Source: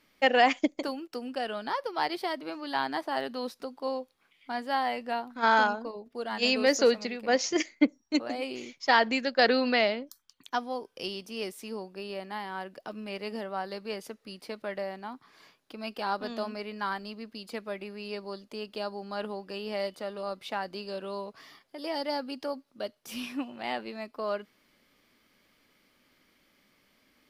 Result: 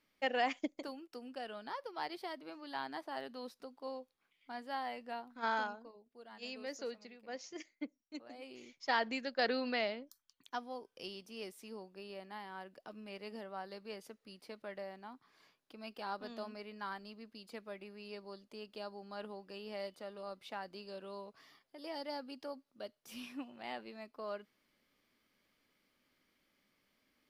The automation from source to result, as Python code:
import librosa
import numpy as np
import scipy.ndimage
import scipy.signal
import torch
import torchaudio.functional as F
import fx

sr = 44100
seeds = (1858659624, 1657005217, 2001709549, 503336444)

y = fx.gain(x, sr, db=fx.line((5.46, -11.5), (6.09, -20.0), (8.19, -20.0), (8.82, -10.5)))